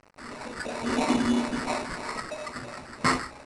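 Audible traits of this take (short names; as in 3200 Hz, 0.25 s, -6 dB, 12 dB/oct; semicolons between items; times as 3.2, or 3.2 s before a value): a quantiser's noise floor 8-bit, dither none; phasing stages 8, 3 Hz, lowest notch 650–3700 Hz; aliases and images of a low sample rate 3200 Hz, jitter 0%; IMA ADPCM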